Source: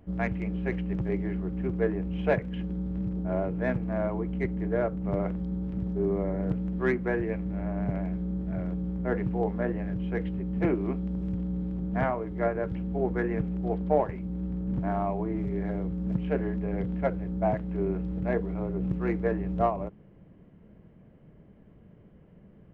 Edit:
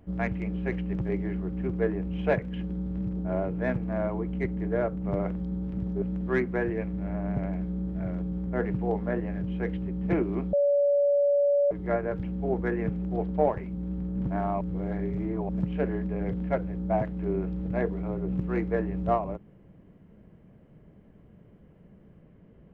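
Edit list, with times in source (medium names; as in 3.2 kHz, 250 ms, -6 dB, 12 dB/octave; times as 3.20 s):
6.02–6.54 s: delete
11.05–12.23 s: bleep 571 Hz -19.5 dBFS
15.13–16.01 s: reverse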